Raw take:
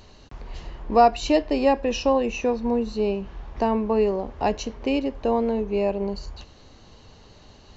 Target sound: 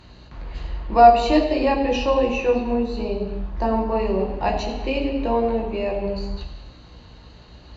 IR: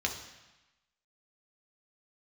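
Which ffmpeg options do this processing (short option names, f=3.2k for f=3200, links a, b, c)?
-filter_complex "[0:a]asettb=1/sr,asplit=3[a][b][c];[a]atrim=end=3.024[d];[b]atrim=start=3.02:end=3.91,asetpts=PTS-STARTPTS,afade=t=in:d=0.004:c=qsin,afade=t=out:st=0.886:d=0.004:c=qsin,equalizer=f=2.5k:t=o:w=0.95:g=-6.5[e];[c]atrim=start=3.906[f];[d][e]acrossfade=d=0.004:c1=hsin:c2=qsin[g];[g][f]acrossfade=d=0.004:c1=qsin:c2=hsin[h];[1:a]atrim=start_sample=2205,afade=t=out:st=0.31:d=0.01,atrim=end_sample=14112,asetrate=29547,aresample=44100[i];[h][i]afir=irnorm=-1:irlink=0,aeval=exprs='val(0)+0.00891*(sin(2*PI*60*n/s)+sin(2*PI*2*60*n/s)/2+sin(2*PI*3*60*n/s)/3+sin(2*PI*4*60*n/s)/4+sin(2*PI*5*60*n/s)/5)':c=same,volume=-6dB"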